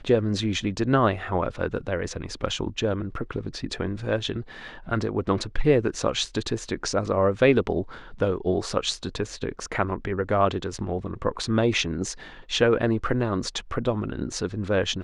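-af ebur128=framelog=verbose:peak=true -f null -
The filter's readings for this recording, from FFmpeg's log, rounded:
Integrated loudness:
  I:         -26.0 LUFS
  Threshold: -36.2 LUFS
Loudness range:
  LRA:         4.8 LU
  Threshold: -46.2 LUFS
  LRA low:   -29.1 LUFS
  LRA high:  -24.4 LUFS
True peak:
  Peak:       -6.5 dBFS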